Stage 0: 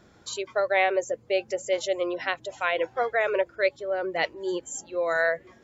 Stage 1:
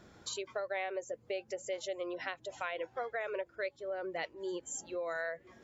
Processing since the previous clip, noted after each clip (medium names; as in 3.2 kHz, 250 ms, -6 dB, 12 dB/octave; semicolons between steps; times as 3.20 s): compression 3:1, threshold -37 dBFS, peak gain reduction 14 dB; trim -1.5 dB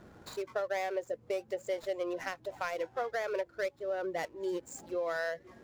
median filter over 15 samples; trim +4 dB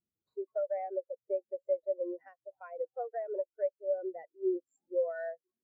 spectral contrast expander 2.5:1; trim +1 dB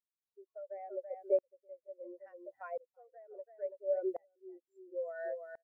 delay 333 ms -13 dB; sawtooth tremolo in dB swelling 0.72 Hz, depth 33 dB; trim +5 dB